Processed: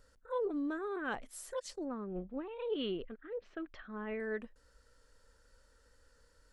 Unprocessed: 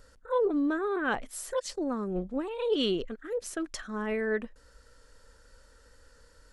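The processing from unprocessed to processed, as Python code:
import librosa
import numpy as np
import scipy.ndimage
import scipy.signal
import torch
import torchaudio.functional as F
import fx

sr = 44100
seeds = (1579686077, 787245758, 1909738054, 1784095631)

y = fx.lowpass(x, sr, hz=3200.0, slope=24, at=(1.85, 4.2))
y = F.gain(torch.from_numpy(y), -8.5).numpy()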